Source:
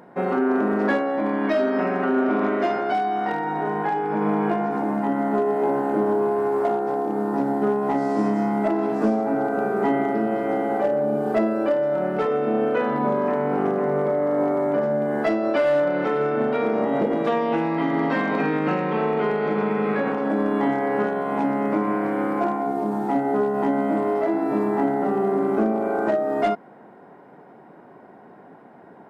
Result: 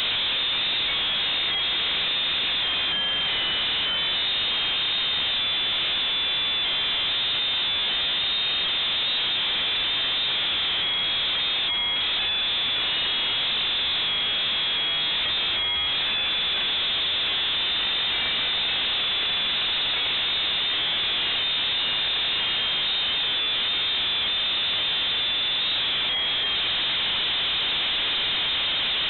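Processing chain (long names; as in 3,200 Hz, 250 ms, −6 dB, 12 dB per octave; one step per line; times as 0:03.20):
sign of each sample alone
voice inversion scrambler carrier 3,900 Hz
level −2 dB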